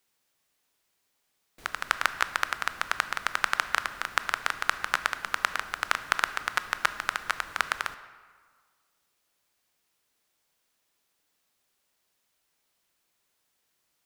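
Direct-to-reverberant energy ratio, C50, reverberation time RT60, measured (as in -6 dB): 11.5 dB, 13.0 dB, 1.7 s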